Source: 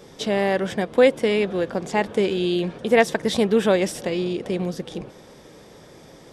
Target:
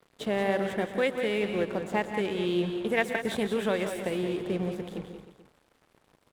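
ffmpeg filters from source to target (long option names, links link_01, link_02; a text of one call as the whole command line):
ffmpeg -i in.wav -filter_complex "[0:a]equalizer=frequency=5300:width=1.9:gain=-13,acrossover=split=1200[link_01][link_02];[link_01]alimiter=limit=-15.5dB:level=0:latency=1:release=377[link_03];[link_03][link_02]amix=inputs=2:normalize=0,aeval=exprs='sgn(val(0))*max(abs(val(0))-0.0075,0)':channel_layout=same,aecho=1:1:125|172|192|311|435:0.158|0.316|0.299|0.168|0.119,volume=-4.5dB" out.wav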